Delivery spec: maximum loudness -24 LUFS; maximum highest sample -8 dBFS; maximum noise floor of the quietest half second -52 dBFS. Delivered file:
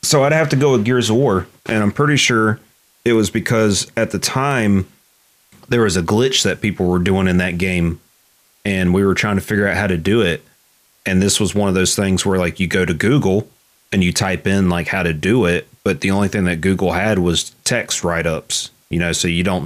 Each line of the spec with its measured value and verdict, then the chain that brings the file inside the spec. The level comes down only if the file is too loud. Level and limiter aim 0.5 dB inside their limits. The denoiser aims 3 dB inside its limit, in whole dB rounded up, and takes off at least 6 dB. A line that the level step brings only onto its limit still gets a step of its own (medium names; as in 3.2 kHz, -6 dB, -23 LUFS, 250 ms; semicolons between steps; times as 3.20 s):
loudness -16.5 LUFS: fail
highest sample -4.5 dBFS: fail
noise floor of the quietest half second -56 dBFS: pass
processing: trim -8 dB